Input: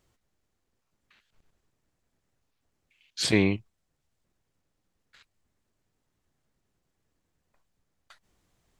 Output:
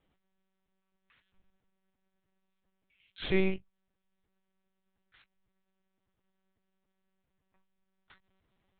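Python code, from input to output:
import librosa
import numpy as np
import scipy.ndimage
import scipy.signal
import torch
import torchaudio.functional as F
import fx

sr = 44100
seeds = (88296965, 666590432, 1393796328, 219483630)

y = fx.doubler(x, sr, ms=15.0, db=-9.0)
y = fx.lpc_monotone(y, sr, seeds[0], pitch_hz=190.0, order=10)
y = F.gain(torch.from_numpy(y), -4.5).numpy()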